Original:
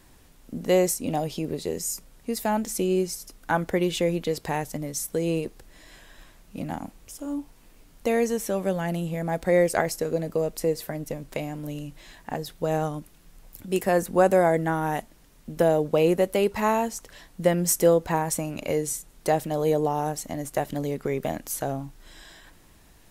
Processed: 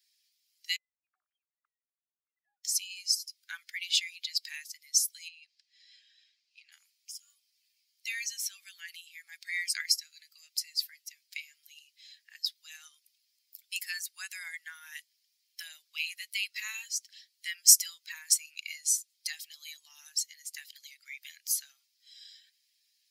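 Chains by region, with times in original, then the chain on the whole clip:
0.76–2.64 sine-wave speech + LPF 1200 Hz 24 dB/oct + compressor 4:1, threshold -38 dBFS
5.28–6.72 BPF 530–6000 Hz + compressor 16:1, threshold -36 dBFS
whole clip: per-bin expansion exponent 1.5; steep high-pass 2000 Hz 36 dB/oct; bell 5100 Hz +11.5 dB 0.72 oct; gain +3.5 dB

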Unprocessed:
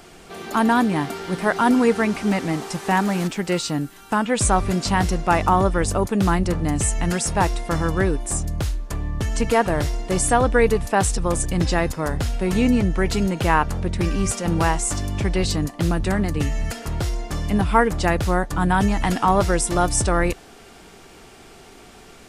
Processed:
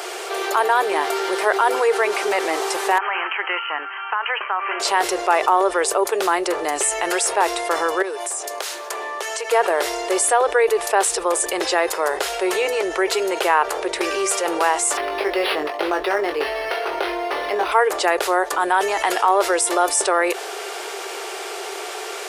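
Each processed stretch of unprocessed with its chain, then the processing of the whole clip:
2.98–4.8 resonant low shelf 730 Hz -12.5 dB, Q 1.5 + compressor, threshold -25 dBFS + brick-wall FIR band-pass 240–3200 Hz
8.02–9.51 HPF 440 Hz + compressor 4:1, threshold -37 dBFS
14.97–17.72 doubler 20 ms -6 dB + decimation joined by straight lines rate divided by 6×
whole clip: elliptic high-pass 380 Hz, stop band 40 dB; dynamic EQ 5900 Hz, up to -4 dB, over -41 dBFS, Q 1.5; fast leveller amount 50%

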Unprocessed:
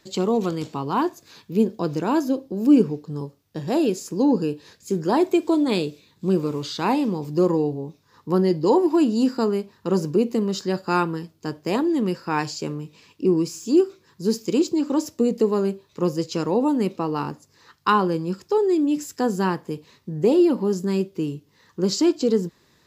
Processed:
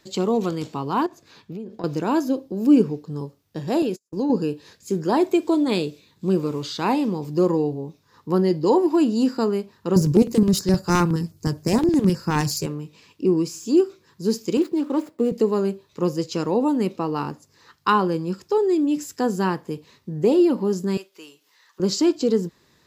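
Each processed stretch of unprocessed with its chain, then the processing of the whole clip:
1.06–1.84 LPF 3500 Hz 6 dB/oct + compressor 12:1, threshold -29 dBFS
3.82–4.3 gate -29 dBFS, range -44 dB + compressor 4:1, threshold -20 dBFS
9.96–12.66 self-modulated delay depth 0.12 ms + LFO notch square 9.6 Hz 240–3200 Hz + tone controls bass +13 dB, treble +10 dB
14.57–15.32 median filter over 15 samples + HPF 210 Hz + bell 6100 Hz -4.5 dB 0.97 oct
20.97–21.8 HPF 1000 Hz + upward compressor, threshold -53 dBFS
whole clip: dry

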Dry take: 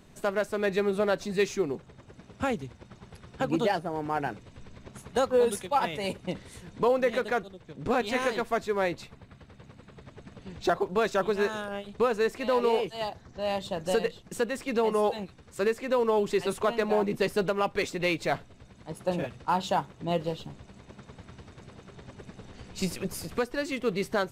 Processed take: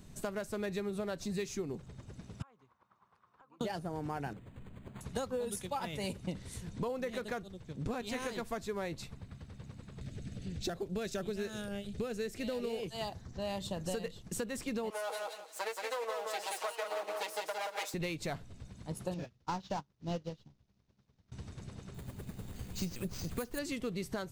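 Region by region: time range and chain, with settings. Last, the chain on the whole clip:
2.42–3.61 band-pass 1100 Hz, Q 5.1 + compressor 5:1, threshold -55 dBFS
4.33–5.01 low shelf 110 Hz -9.5 dB + decimation joined by straight lines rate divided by 8×
10.01–12.83 bell 1000 Hz -14 dB 0.67 oct + upward compressor, threshold -38 dBFS
14.9–17.94 minimum comb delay 6.3 ms + HPF 500 Hz 24 dB/oct + feedback echo 0.175 s, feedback 22%, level -4.5 dB
19.14–21.32 CVSD 32 kbps + sample leveller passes 1 + upward expander 2.5:1, over -40 dBFS
21.94–23.59 CVSD 64 kbps + careless resampling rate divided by 4×, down filtered, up hold
whole clip: tone controls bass +9 dB, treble +8 dB; compressor, threshold -29 dBFS; gain -5 dB

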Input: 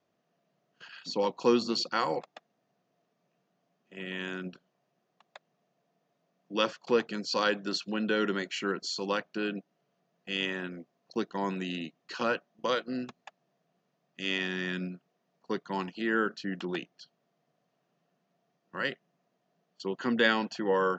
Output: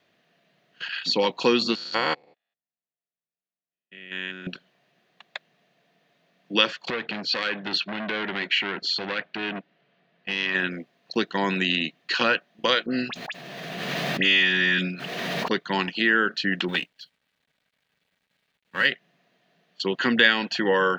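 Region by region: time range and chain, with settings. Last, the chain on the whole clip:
1.75–4.47 stepped spectrum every 0.2 s + upward expander 2.5:1, over -54 dBFS
6.9–10.55 LPF 3400 Hz + compressor 5:1, threshold -32 dBFS + core saturation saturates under 1700 Hz
12.86–15.51 dispersion highs, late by 56 ms, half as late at 2200 Hz + backwards sustainer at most 23 dB/s
16.68–18.86 G.711 law mismatch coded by A + notch comb 350 Hz
whole clip: band shelf 2600 Hz +10 dB; compressor 2:1, threshold -28 dBFS; gain +8 dB

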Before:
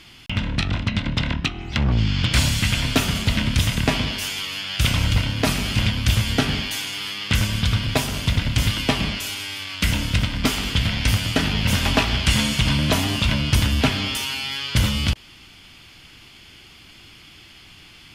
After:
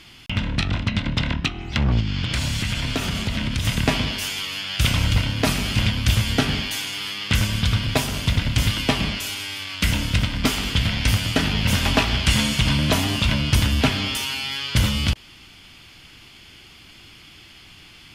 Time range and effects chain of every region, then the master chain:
2–3.65 high shelf 9400 Hz -7 dB + compressor 4:1, threshold -20 dBFS
whole clip: dry

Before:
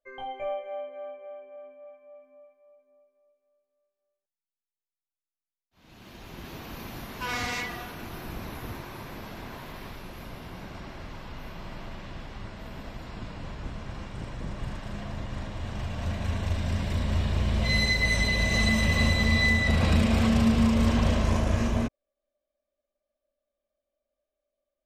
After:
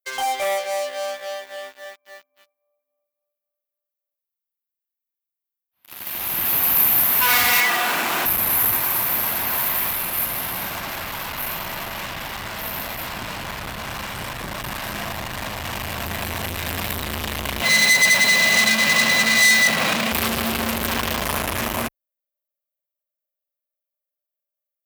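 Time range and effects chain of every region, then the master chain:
7.6–8.26 three-band isolator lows -23 dB, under 180 Hz, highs -21 dB, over 5100 Hz + fast leveller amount 70%
17.62–20.12 HPF 150 Hz 24 dB/oct + air absorption 95 m
whole clip: EQ curve 100 Hz 0 dB, 420 Hz -6 dB, 790 Hz -1 dB, 2600 Hz -5 dB, 6800 Hz -16 dB, 13000 Hz +7 dB; sample leveller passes 5; tilt +4 dB/oct; gain -1 dB

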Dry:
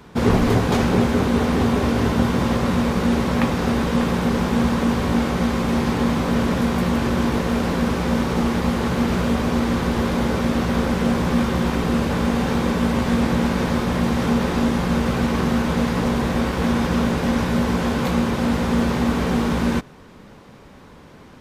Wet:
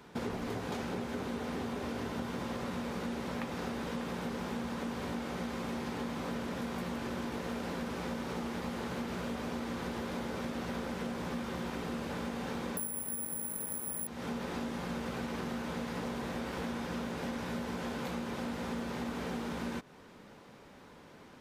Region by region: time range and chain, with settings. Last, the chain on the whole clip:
12.77–14.07 air absorption 190 m + careless resampling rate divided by 4×, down none, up zero stuff
whole clip: low shelf 140 Hz -11 dB; notch 1100 Hz, Q 23; compressor, threshold -27 dBFS; gain -7.5 dB

